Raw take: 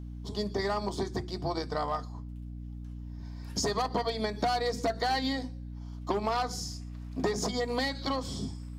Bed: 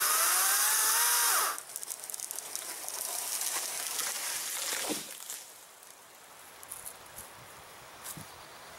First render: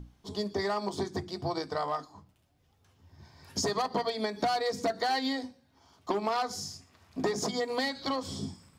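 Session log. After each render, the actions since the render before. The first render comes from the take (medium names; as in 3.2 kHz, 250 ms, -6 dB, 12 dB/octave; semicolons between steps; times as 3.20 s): hum notches 60/120/180/240/300 Hz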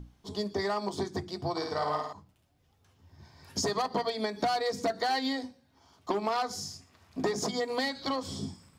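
1.51–2.13 s: flutter echo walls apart 9.3 m, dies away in 0.81 s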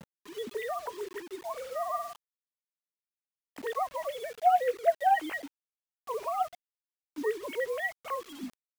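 formants replaced by sine waves; bit crusher 8-bit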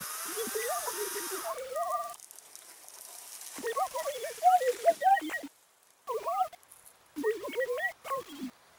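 add bed -11.5 dB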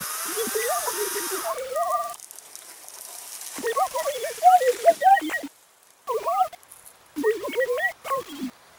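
trim +8 dB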